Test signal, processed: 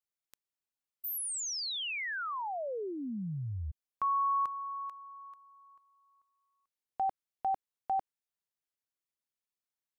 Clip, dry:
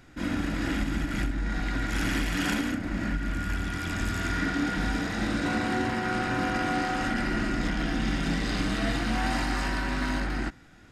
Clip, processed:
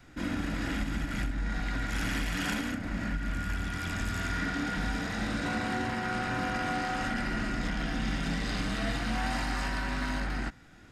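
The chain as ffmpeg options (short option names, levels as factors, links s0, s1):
-filter_complex "[0:a]adynamicequalizer=threshold=0.00447:dfrequency=330:dqfactor=3.5:tfrequency=330:tqfactor=3.5:attack=5:release=100:ratio=0.375:range=3.5:mode=cutabove:tftype=bell,asplit=2[s0][s1];[s1]alimiter=level_in=1.26:limit=0.0631:level=0:latency=1:release=274,volume=0.794,volume=0.75[s2];[s0][s2]amix=inputs=2:normalize=0,volume=0.531"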